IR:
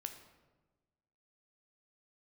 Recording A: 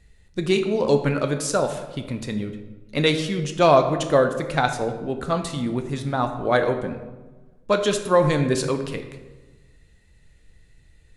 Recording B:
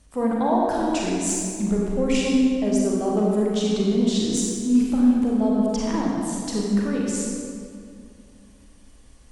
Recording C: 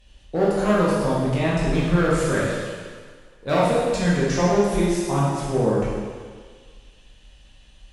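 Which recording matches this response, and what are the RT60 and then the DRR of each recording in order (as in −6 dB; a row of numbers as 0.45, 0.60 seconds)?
A; 1.3, 2.3, 1.7 seconds; 6.0, −3.5, −7.5 decibels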